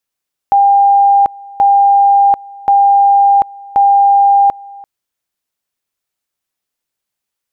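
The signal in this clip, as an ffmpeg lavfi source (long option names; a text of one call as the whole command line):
ffmpeg -f lavfi -i "aevalsrc='pow(10,(-5-24*gte(mod(t,1.08),0.74))/20)*sin(2*PI*800*t)':duration=4.32:sample_rate=44100" out.wav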